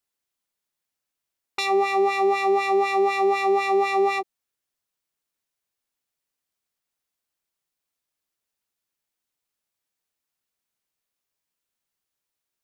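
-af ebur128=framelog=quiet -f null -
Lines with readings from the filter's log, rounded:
Integrated loudness:
  I:         -21.6 LUFS
  Threshold: -31.8 LUFS
Loudness range:
  LRA:         8.6 LU
  Threshold: -43.8 LUFS
  LRA low:   -30.3 LUFS
  LRA high:  -21.7 LUFS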